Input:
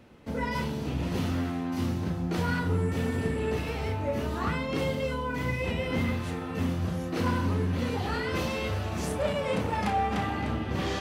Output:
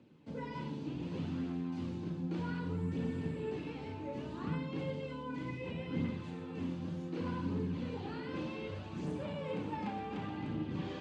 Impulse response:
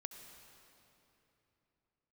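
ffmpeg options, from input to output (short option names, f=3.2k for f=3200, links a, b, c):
-filter_complex "[0:a]highpass=f=100:w=0.5412,highpass=f=100:w=1.3066,equalizer=f=160:t=q:w=4:g=6,equalizer=f=300:t=q:w=4:g=7,equalizer=f=680:t=q:w=4:g=-7,equalizer=f=1.3k:t=q:w=4:g=-6,equalizer=f=1.9k:t=q:w=4:g=-6,equalizer=f=5.7k:t=q:w=4:g=-6,lowpass=f=7.1k:w=0.5412,lowpass=f=7.1k:w=1.3066,aphaser=in_gain=1:out_gain=1:delay=3.9:decay=0.29:speed=0.66:type=triangular[a];[1:a]atrim=start_sample=2205,atrim=end_sample=6174[b];[a][b]afir=irnorm=-1:irlink=0,acrossover=split=3200[c][d];[d]acompressor=threshold=-56dB:ratio=4:attack=1:release=60[e];[c][e]amix=inputs=2:normalize=0,volume=-6dB"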